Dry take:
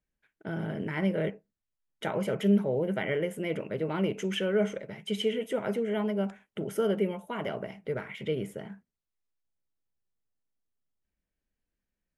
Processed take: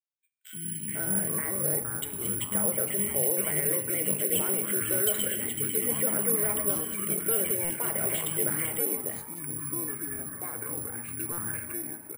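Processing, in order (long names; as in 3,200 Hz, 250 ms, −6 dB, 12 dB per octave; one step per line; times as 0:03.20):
treble cut that deepens with the level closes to 2,200 Hz, closed at −29 dBFS
meter weighting curve D
noise reduction from a noise print of the clip's start 21 dB
0:00.94–0:02.09: spectral tilt −3 dB per octave
brickwall limiter −24.5 dBFS, peak gain reduction 11 dB
on a send at −11.5 dB: convolution reverb, pre-delay 3 ms
on the sum: delay with pitch and tempo change per echo 170 ms, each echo −5 semitones, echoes 3, each echo −6 dB
three-band delay without the direct sound highs, lows, mids 80/500 ms, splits 250/2,400 Hz
bad sample-rate conversion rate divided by 4×, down filtered, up zero stuff
buffer that repeats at 0:07.64/0:11.32, samples 256, times 9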